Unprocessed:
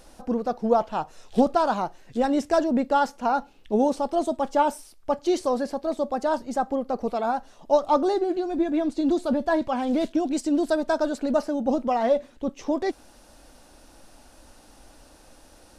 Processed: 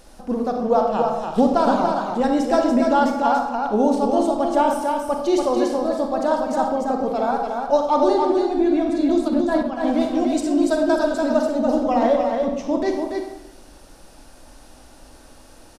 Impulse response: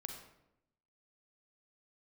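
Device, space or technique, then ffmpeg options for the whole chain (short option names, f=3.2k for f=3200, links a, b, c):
bathroom: -filter_complex "[1:a]atrim=start_sample=2205[a];[0:a][a]afir=irnorm=-1:irlink=0,asettb=1/sr,asplit=3[b][c][d];[b]atrim=end=9.284[e];[c]atrim=start=9.28:end=9.88,asetpts=PTS-STARTPTS,afade=t=in:d=0.004:c=qsin,afade=t=out:st=0.596:d=0.004:c=qsin,agate=range=-9dB:threshold=-25dB:ratio=16:detection=peak[f];[d]atrim=start=9.876[g];[e][f]acrossfade=d=0.004:c1=hsin:c2=qsin[h];[h][g]acrossfade=d=0.004:c1=qsin:c2=hsin,aecho=1:1:288:0.596,volume=6dB"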